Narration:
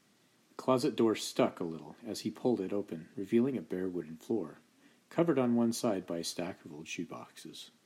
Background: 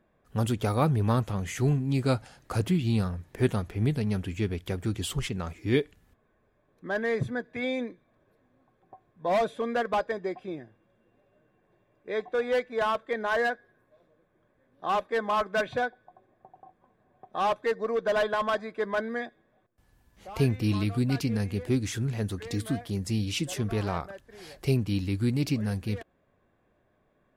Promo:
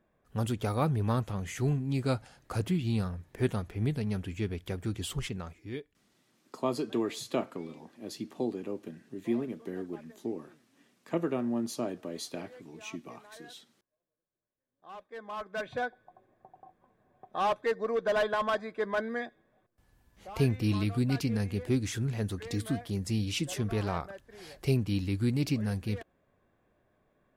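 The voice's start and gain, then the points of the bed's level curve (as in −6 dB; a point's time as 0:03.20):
5.95 s, −2.0 dB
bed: 0:05.33 −4 dB
0:06.19 −26 dB
0:14.57 −26 dB
0:15.96 −2 dB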